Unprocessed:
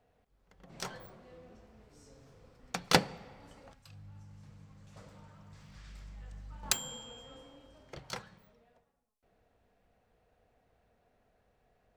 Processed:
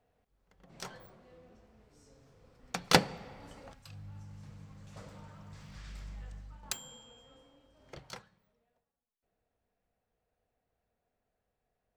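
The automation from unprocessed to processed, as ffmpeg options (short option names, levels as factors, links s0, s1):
-af "volume=3.55,afade=t=in:st=2.35:d=1.08:silence=0.421697,afade=t=out:st=6.13:d=0.53:silence=0.266073,afade=t=in:st=7.76:d=0.14:silence=0.446684,afade=t=out:st=7.9:d=0.41:silence=0.266073"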